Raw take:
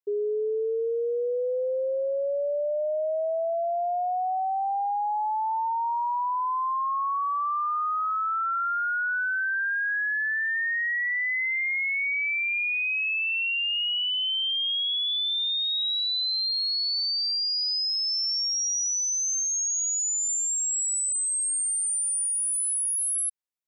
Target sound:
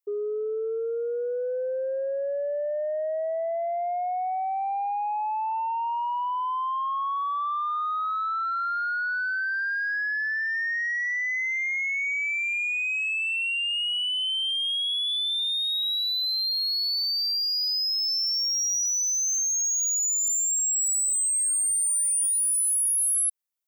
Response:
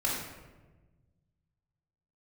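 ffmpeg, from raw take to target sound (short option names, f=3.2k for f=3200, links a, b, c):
-af "highpass=330,highshelf=f=8.5k:g=10,asoftclip=type=tanh:threshold=-21dB"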